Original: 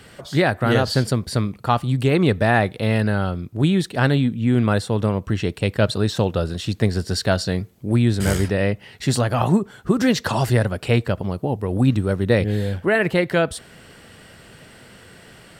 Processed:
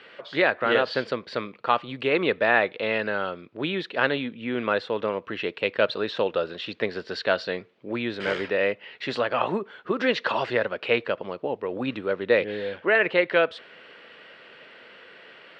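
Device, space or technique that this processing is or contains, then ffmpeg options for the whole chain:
phone earpiece: -af "highpass=470,equalizer=f=500:t=q:w=4:g=3,equalizer=f=760:t=q:w=4:g=-6,equalizer=f=2.5k:t=q:w=4:g=3,lowpass=f=3.6k:w=0.5412,lowpass=f=3.6k:w=1.3066"

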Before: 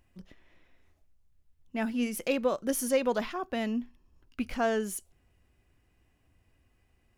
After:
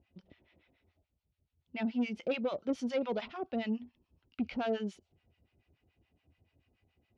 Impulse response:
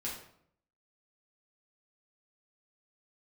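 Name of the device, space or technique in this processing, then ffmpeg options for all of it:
guitar amplifier with harmonic tremolo: -filter_complex "[0:a]acrossover=split=820[a][b];[a]aeval=exprs='val(0)*(1-1/2+1/2*cos(2*PI*7*n/s))':c=same[c];[b]aeval=exprs='val(0)*(1-1/2-1/2*cos(2*PI*7*n/s))':c=same[d];[c][d]amix=inputs=2:normalize=0,asoftclip=type=tanh:threshold=-27.5dB,highpass=83,equalizer=f=83:t=q:w=4:g=4,equalizer=f=1.1k:t=q:w=4:g=-8,equalizer=f=1.7k:t=q:w=4:g=-9,lowpass=f=4.3k:w=0.5412,lowpass=f=4.3k:w=1.3066,volume=3dB"

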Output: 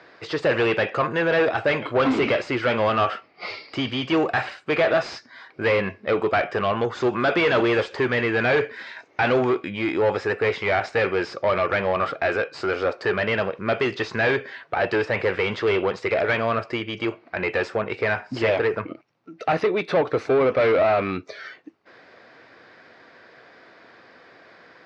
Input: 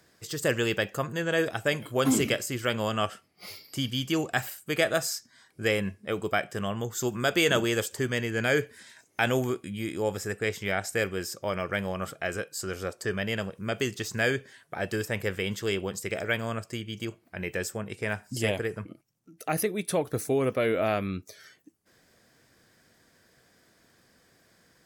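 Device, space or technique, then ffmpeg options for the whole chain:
overdrive pedal into a guitar cabinet: -filter_complex "[0:a]asplit=2[a][b];[b]highpass=f=720:p=1,volume=26dB,asoftclip=type=tanh:threshold=-10dB[c];[a][c]amix=inputs=2:normalize=0,lowpass=f=2.3k:p=1,volume=-6dB,highpass=84,equalizer=f=140:t=q:w=4:g=-3,equalizer=f=200:t=q:w=4:g=-6,equalizer=f=1.7k:t=q:w=4:g=-3,equalizer=f=3.2k:t=q:w=4:g=-6,lowpass=f=4k:w=0.5412,lowpass=f=4k:w=1.3066"

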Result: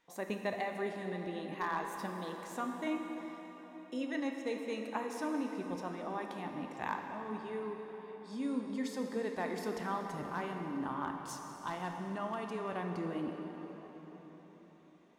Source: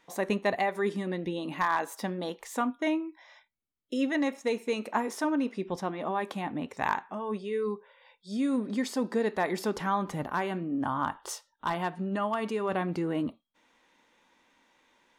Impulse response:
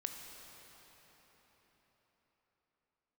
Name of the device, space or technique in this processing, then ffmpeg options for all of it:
cathedral: -filter_complex "[1:a]atrim=start_sample=2205[a];[0:a][a]afir=irnorm=-1:irlink=0,volume=-7dB"

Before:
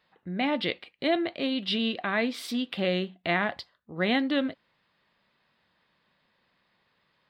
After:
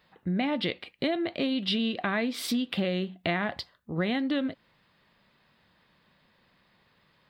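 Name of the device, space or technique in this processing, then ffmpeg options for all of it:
ASMR close-microphone chain: -af "lowshelf=f=250:g=7,acompressor=threshold=-29dB:ratio=6,highshelf=f=9.6k:g=5,volume=4dB"

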